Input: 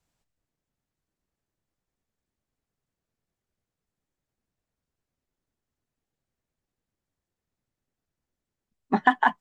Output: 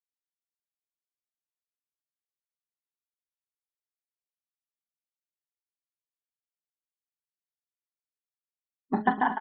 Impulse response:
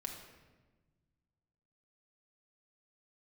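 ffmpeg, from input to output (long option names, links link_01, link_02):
-filter_complex "[0:a]tiltshelf=frequency=1100:gain=5,bandreject=frequency=210.3:width_type=h:width=4,bandreject=frequency=420.6:width_type=h:width=4,bandreject=frequency=630.9:width_type=h:width=4,bandreject=frequency=841.2:width_type=h:width=4,bandreject=frequency=1051.5:width_type=h:width=4,bandreject=frequency=1261.8:width_type=h:width=4,bandreject=frequency=1472.1:width_type=h:width=4,bandreject=frequency=1682.4:width_type=h:width=4,bandreject=frequency=1892.7:width_type=h:width=4,bandreject=frequency=2103:width_type=h:width=4,bandreject=frequency=2313.3:width_type=h:width=4,bandreject=frequency=2523.6:width_type=h:width=4,bandreject=frequency=2733.9:width_type=h:width=4,bandreject=frequency=2944.2:width_type=h:width=4,bandreject=frequency=3154.5:width_type=h:width=4,bandreject=frequency=3364.8:width_type=h:width=4,bandreject=frequency=3575.1:width_type=h:width=4,bandreject=frequency=3785.4:width_type=h:width=4,bandreject=frequency=3995.7:width_type=h:width=4,bandreject=frequency=4206:width_type=h:width=4,bandreject=frequency=4416.3:width_type=h:width=4,bandreject=frequency=4626.6:width_type=h:width=4,bandreject=frequency=4836.9:width_type=h:width=4,bandreject=frequency=5047.2:width_type=h:width=4,bandreject=frequency=5257.5:width_type=h:width=4,bandreject=frequency=5467.8:width_type=h:width=4,bandreject=frequency=5678.1:width_type=h:width=4,bandreject=frequency=5888.4:width_type=h:width=4,bandreject=frequency=6098.7:width_type=h:width=4,bandreject=frequency=6309:width_type=h:width=4,afftfilt=real='re*gte(hypot(re,im),0.00891)':imag='im*gte(hypot(re,im),0.00891)':win_size=1024:overlap=0.75,asplit=2[link_01][link_02];[link_02]aecho=0:1:41|141|244|367:0.299|0.708|0.178|0.133[link_03];[link_01][link_03]amix=inputs=2:normalize=0,volume=-7dB"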